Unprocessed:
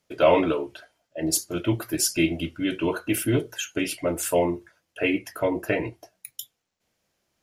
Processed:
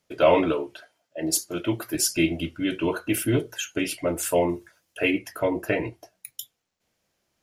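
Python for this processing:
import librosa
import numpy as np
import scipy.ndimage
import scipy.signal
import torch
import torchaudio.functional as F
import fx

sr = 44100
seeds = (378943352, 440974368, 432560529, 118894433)

y = fx.highpass(x, sr, hz=180.0, slope=6, at=(0.62, 1.95))
y = fx.high_shelf(y, sr, hz=4900.0, db=9.0, at=(4.49, 5.11))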